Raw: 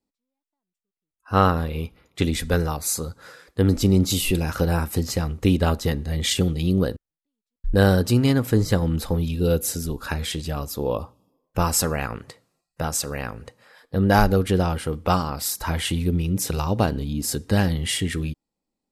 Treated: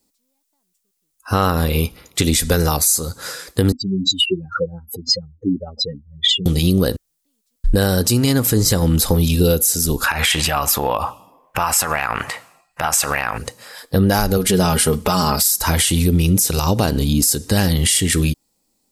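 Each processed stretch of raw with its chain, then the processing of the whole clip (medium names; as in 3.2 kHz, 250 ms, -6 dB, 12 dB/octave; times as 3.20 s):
3.72–6.46 s: spectral contrast enhancement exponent 3.7 + band-pass 400–4600 Hz
10.04–13.38 s: high-order bell 1.4 kHz +15.5 dB 2.5 oct + compression 10:1, threshold -25 dBFS + tape noise reduction on one side only decoder only
14.37–15.40 s: comb 4.8 ms, depth 63% + compression 2:1, threshold -21 dBFS
whole clip: tone controls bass -1 dB, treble +13 dB; compression, threshold -22 dBFS; loudness maximiser +16 dB; trim -4.5 dB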